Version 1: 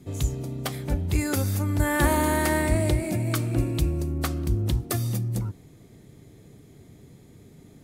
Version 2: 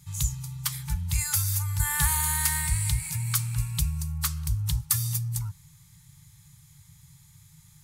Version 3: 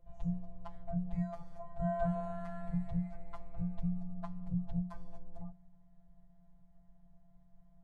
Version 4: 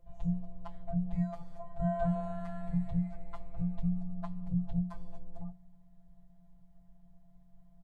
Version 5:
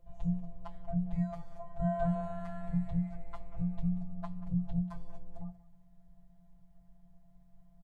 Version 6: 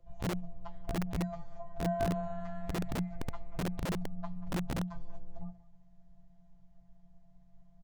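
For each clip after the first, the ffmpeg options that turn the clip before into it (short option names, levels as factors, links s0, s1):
-af "bass=f=250:g=1,treble=f=4000:g=12,afftfilt=real='re*(1-between(b*sr/4096,180,810))':imag='im*(1-between(b*sr/4096,180,810))':win_size=4096:overlap=0.75,adynamicequalizer=threshold=0.01:dfrequency=920:dqfactor=0.95:tfrequency=920:tqfactor=0.95:attack=5:release=100:ratio=0.375:range=2.5:mode=cutabove:tftype=bell,volume=0.668"
-af "afftfilt=real='hypot(re,im)*cos(PI*b)':imag='0':win_size=1024:overlap=0.75,afreqshift=-180,lowpass=f=540:t=q:w=4.9,volume=1.12"
-filter_complex "[0:a]asplit=2[s0][s1];[s1]adelay=23,volume=0.266[s2];[s0][s2]amix=inputs=2:normalize=0,volume=1.26"
-af "aecho=1:1:186:0.141"
-filter_complex "[0:a]asplit=2[s0][s1];[s1]adelay=15,volume=0.251[s2];[s0][s2]amix=inputs=2:normalize=0,aresample=16000,aresample=44100,acrossover=split=170|610[s3][s4][s5];[s3]aeval=exprs='(mod(31.6*val(0)+1,2)-1)/31.6':c=same[s6];[s6][s4][s5]amix=inputs=3:normalize=0"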